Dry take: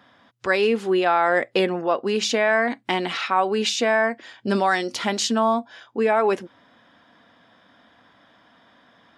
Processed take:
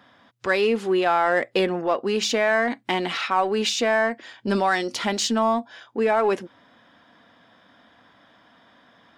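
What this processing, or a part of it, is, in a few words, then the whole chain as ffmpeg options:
parallel distortion: -filter_complex "[0:a]asplit=2[link_01][link_02];[link_02]asoftclip=type=hard:threshold=-24.5dB,volume=-10.5dB[link_03];[link_01][link_03]amix=inputs=2:normalize=0,volume=-2dB"

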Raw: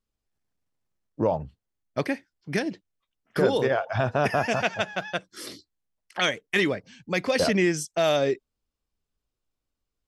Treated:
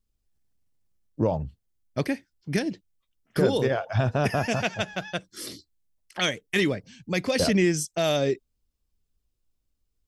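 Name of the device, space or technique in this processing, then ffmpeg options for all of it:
smiley-face EQ: -af "lowshelf=frequency=89:gain=7.5,equalizer=frequency=1100:width_type=o:width=2.8:gain=-6.5,highshelf=frequency=9800:gain=3,volume=2.5dB"

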